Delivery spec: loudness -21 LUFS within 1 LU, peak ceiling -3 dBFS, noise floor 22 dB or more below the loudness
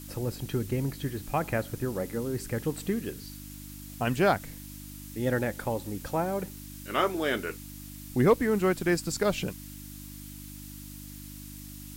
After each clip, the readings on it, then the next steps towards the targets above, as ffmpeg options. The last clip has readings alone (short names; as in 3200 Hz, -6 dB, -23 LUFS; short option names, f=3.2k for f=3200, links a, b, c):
hum 50 Hz; harmonics up to 300 Hz; hum level -42 dBFS; noise floor -44 dBFS; noise floor target -52 dBFS; loudness -29.5 LUFS; peak -10.5 dBFS; loudness target -21.0 LUFS
-> -af "bandreject=f=50:t=h:w=4,bandreject=f=100:t=h:w=4,bandreject=f=150:t=h:w=4,bandreject=f=200:t=h:w=4,bandreject=f=250:t=h:w=4,bandreject=f=300:t=h:w=4"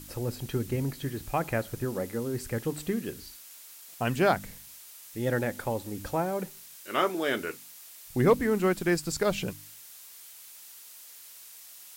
hum none; noise floor -49 dBFS; noise floor target -52 dBFS
-> -af "afftdn=nr=6:nf=-49"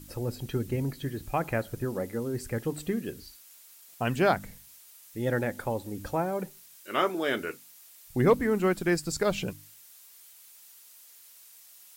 noise floor -54 dBFS; loudness -30.0 LUFS; peak -10.5 dBFS; loudness target -21.0 LUFS
-> -af "volume=9dB,alimiter=limit=-3dB:level=0:latency=1"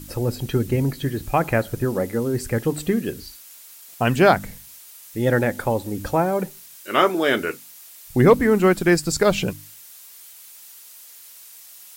loudness -21.0 LUFS; peak -3.0 dBFS; noise floor -45 dBFS